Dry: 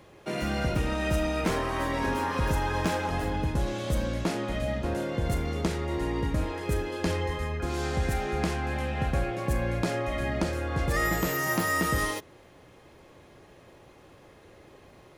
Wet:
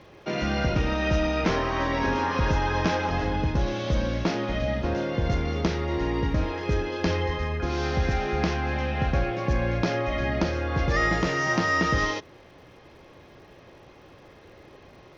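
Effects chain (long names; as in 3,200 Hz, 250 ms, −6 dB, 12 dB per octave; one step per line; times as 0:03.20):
elliptic low-pass filter 5,900 Hz, stop band 40 dB
surface crackle 220 per second −59 dBFS
level +4 dB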